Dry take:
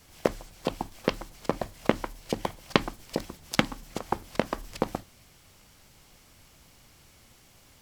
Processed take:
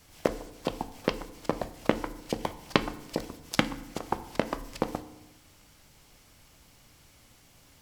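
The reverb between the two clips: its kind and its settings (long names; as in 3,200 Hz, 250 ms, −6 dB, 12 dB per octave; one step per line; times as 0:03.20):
feedback delay network reverb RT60 0.97 s, low-frequency decay 1.25×, high-frequency decay 0.65×, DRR 11.5 dB
level −1.5 dB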